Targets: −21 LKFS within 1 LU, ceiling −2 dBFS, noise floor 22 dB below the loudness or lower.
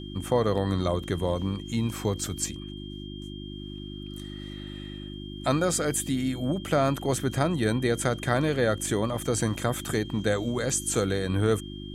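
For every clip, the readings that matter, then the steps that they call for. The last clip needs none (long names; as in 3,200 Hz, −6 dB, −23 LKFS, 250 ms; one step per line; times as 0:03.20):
mains hum 50 Hz; hum harmonics up to 350 Hz; level of the hum −37 dBFS; interfering tone 3,200 Hz; level of the tone −45 dBFS; integrated loudness −27.0 LKFS; sample peak −8.5 dBFS; target loudness −21.0 LKFS
→ hum removal 50 Hz, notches 7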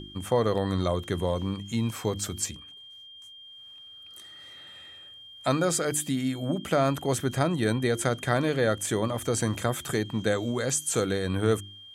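mains hum none found; interfering tone 3,200 Hz; level of the tone −45 dBFS
→ notch filter 3,200 Hz, Q 30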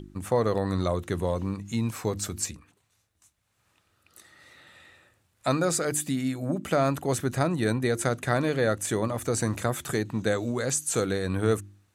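interfering tone none found; integrated loudness −27.5 LKFS; sample peak −9.0 dBFS; target loudness −21.0 LKFS
→ level +6.5 dB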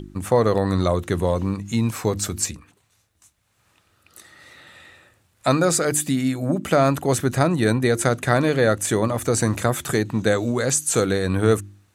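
integrated loudness −21.0 LKFS; sample peak −2.5 dBFS; background noise floor −65 dBFS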